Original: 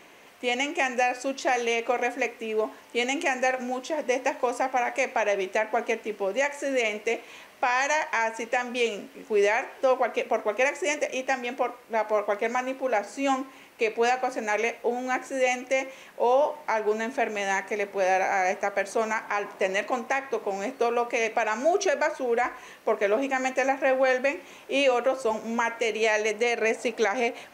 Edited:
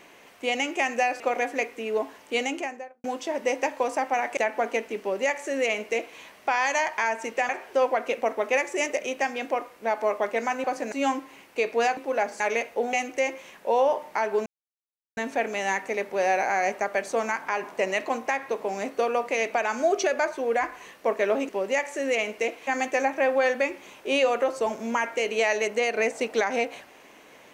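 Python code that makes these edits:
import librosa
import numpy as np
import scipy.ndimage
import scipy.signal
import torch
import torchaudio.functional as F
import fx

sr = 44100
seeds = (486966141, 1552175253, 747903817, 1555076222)

y = fx.studio_fade_out(x, sr, start_s=2.98, length_s=0.69)
y = fx.edit(y, sr, fx.cut(start_s=1.2, length_s=0.63),
    fx.cut(start_s=5.0, length_s=0.52),
    fx.duplicate(start_s=6.15, length_s=1.18, to_s=23.31),
    fx.cut(start_s=8.64, length_s=0.93),
    fx.swap(start_s=12.72, length_s=0.43, other_s=14.2, other_length_s=0.28),
    fx.cut(start_s=15.01, length_s=0.45),
    fx.insert_silence(at_s=16.99, length_s=0.71), tone=tone)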